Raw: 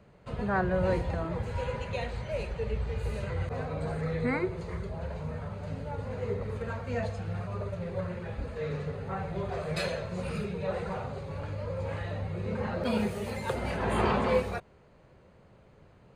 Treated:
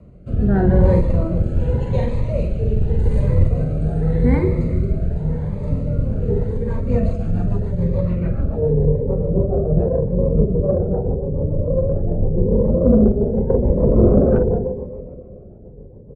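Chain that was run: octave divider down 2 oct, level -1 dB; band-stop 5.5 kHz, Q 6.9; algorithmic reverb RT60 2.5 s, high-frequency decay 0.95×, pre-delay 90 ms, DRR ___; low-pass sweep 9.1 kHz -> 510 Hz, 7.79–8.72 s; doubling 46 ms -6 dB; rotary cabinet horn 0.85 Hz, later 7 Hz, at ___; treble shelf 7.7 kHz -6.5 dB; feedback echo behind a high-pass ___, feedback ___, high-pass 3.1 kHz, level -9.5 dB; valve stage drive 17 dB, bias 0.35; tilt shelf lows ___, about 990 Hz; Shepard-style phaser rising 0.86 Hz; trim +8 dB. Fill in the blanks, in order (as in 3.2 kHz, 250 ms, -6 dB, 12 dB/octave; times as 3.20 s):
11 dB, 6.17 s, 144 ms, 80%, +9 dB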